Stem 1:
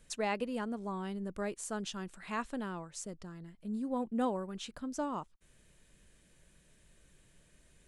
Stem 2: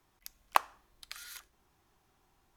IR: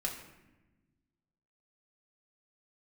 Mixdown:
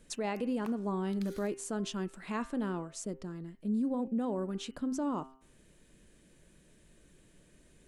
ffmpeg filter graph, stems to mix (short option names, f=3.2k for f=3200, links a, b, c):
-filter_complex "[0:a]equalizer=f=300:w=0.85:g=8.5,bandreject=f=132:t=h:w=4,bandreject=f=264:t=h:w=4,bandreject=f=396:t=h:w=4,bandreject=f=528:t=h:w=4,bandreject=f=660:t=h:w=4,bandreject=f=792:t=h:w=4,bandreject=f=924:t=h:w=4,bandreject=f=1.056k:t=h:w=4,bandreject=f=1.188k:t=h:w=4,bandreject=f=1.32k:t=h:w=4,bandreject=f=1.452k:t=h:w=4,bandreject=f=1.584k:t=h:w=4,bandreject=f=1.716k:t=h:w=4,bandreject=f=1.848k:t=h:w=4,bandreject=f=1.98k:t=h:w=4,bandreject=f=2.112k:t=h:w=4,bandreject=f=2.244k:t=h:w=4,bandreject=f=2.376k:t=h:w=4,bandreject=f=2.508k:t=h:w=4,bandreject=f=2.64k:t=h:w=4,bandreject=f=2.772k:t=h:w=4,bandreject=f=2.904k:t=h:w=4,bandreject=f=3.036k:t=h:w=4,volume=0.5dB,asplit=2[a][b];[1:a]adelay=100,volume=-4dB[c];[b]apad=whole_len=117725[d];[c][d]sidechaincompress=threshold=-35dB:ratio=8:attack=35:release=499[e];[a][e]amix=inputs=2:normalize=0,alimiter=level_in=2dB:limit=-24dB:level=0:latency=1:release=33,volume=-2dB"